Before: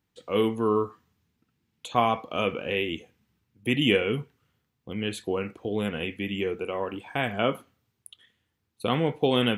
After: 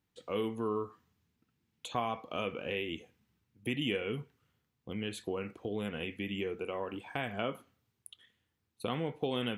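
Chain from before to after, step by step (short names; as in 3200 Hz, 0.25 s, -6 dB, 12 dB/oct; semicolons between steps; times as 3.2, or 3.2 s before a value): compressor 2:1, threshold -31 dBFS, peak gain reduction 8 dB; gain -4 dB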